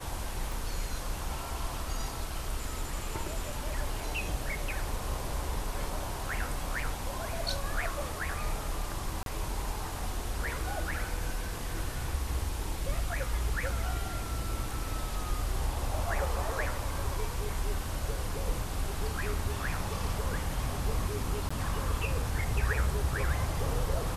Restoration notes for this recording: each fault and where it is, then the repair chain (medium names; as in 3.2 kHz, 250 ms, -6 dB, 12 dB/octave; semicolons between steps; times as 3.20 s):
0.52 s: pop
9.23–9.26 s: dropout 32 ms
21.49–21.50 s: dropout 15 ms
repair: de-click; interpolate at 9.23 s, 32 ms; interpolate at 21.49 s, 15 ms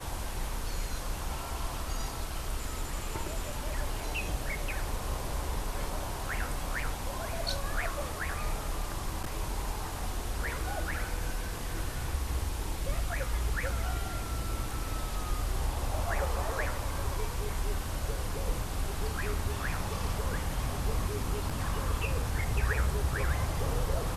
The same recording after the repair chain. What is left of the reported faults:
0.52 s: pop